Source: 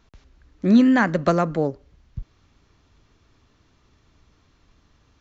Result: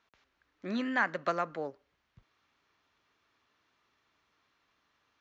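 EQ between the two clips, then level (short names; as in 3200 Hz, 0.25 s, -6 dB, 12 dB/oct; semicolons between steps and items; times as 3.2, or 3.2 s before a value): band-pass 1800 Hz, Q 0.65; -6.0 dB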